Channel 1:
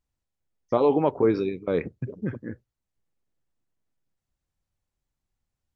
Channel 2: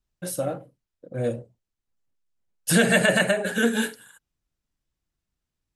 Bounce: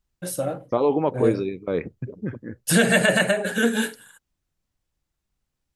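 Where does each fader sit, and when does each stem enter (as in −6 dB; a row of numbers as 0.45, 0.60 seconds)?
0.0, +1.0 decibels; 0.00, 0.00 seconds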